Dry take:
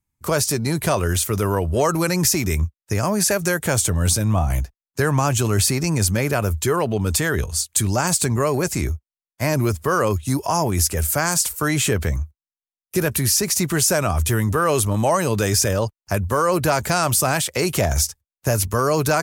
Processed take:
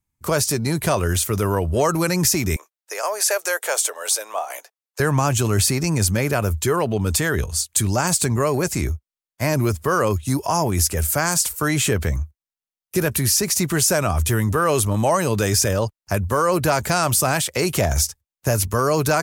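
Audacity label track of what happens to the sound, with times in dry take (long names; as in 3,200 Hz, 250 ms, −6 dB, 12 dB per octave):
2.560000	5.000000	Butterworth high-pass 460 Hz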